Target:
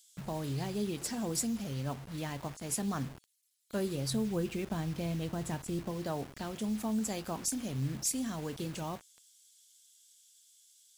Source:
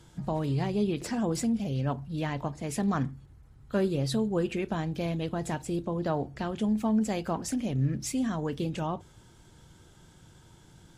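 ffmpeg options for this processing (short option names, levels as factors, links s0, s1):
-filter_complex "[0:a]asettb=1/sr,asplit=3[s0][s1][s2];[s0]atrim=end=4.104[s3];[s1]atrim=start=4.1:end=5.91,asetpts=PTS-STARTPTS,afade=t=in:d=0.004:c=qsin,afade=t=out:st=1.806:d=0.004:c=qsin,bass=f=250:g=5,treble=f=4000:g=-7[s4];[s2]atrim=start=5.906[s5];[s3][s4]acrossfade=d=0.004:c1=hsin:c2=qsin[s6];[s6][s5]acrossfade=d=0.004:c1=qsin:c2=hsin,acrossover=split=2800[s7][s8];[s7]acrusher=bits=6:mix=0:aa=0.000001[s9];[s8]crystalizer=i=3:c=0[s10];[s9][s10]amix=inputs=2:normalize=0,volume=0.447"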